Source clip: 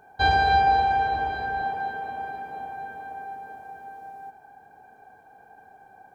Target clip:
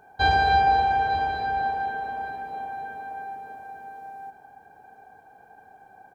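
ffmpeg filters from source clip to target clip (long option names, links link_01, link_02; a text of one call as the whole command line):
ffmpeg -i in.wav -af "aecho=1:1:899:0.168" out.wav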